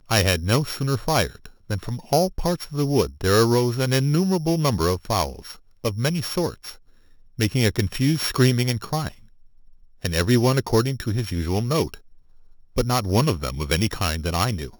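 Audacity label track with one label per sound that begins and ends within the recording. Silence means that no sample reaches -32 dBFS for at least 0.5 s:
7.390000	9.090000	sound
10.040000	11.940000	sound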